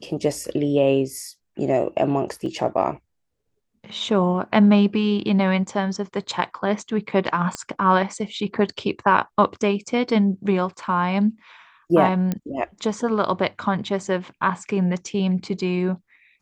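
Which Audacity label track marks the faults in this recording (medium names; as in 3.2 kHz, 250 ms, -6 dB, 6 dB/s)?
2.460000	2.460000	dropout 2.1 ms
7.550000	7.550000	pop -14 dBFS
12.320000	12.320000	pop -12 dBFS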